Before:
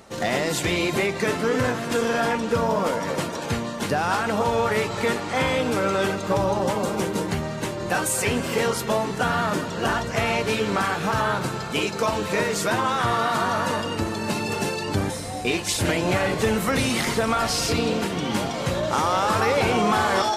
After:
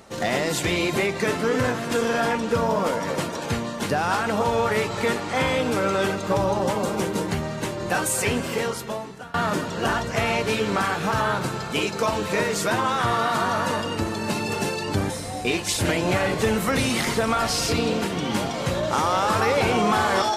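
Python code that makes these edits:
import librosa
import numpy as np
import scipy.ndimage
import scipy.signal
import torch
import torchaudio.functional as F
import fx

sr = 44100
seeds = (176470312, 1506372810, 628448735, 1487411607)

y = fx.edit(x, sr, fx.fade_out_to(start_s=8.3, length_s=1.04, floor_db=-23.5), tone=tone)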